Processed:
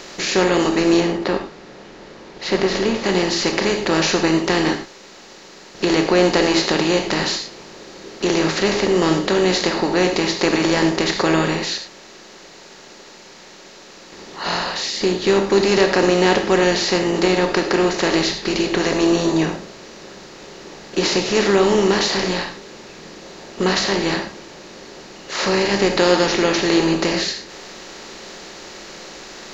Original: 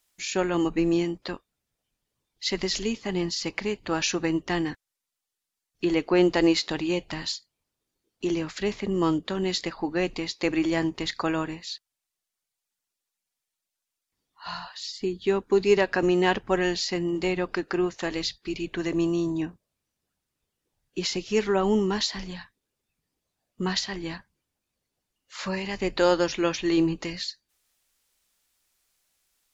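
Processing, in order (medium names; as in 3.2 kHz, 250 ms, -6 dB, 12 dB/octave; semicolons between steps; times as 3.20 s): spectral levelling over time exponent 0.4; 1.00–3.04 s: low-pass 2.4 kHz 6 dB/octave; gated-style reverb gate 130 ms flat, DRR 5.5 dB; trim +1 dB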